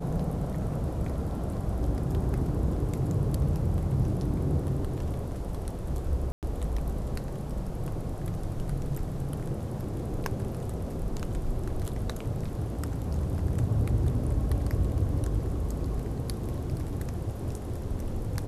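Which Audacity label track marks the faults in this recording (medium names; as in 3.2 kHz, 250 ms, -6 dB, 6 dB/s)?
6.320000	6.430000	dropout 108 ms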